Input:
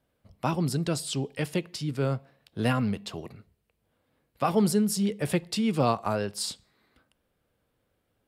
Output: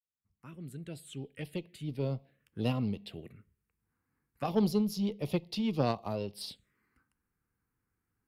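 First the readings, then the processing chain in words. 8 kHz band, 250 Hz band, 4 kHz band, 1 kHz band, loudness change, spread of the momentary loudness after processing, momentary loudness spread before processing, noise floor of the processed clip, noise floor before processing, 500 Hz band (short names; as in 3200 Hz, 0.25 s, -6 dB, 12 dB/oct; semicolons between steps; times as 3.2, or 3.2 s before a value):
-16.0 dB, -5.5 dB, -8.0 dB, -9.5 dB, -6.5 dB, 17 LU, 11 LU, under -85 dBFS, -76 dBFS, -6.0 dB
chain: opening faded in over 2.14 s; envelope phaser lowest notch 590 Hz, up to 1600 Hz, full sweep at -27 dBFS; added harmonics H 3 -18 dB, 5 -35 dB, 6 -32 dB, 7 -39 dB, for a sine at -12.5 dBFS; gain -2 dB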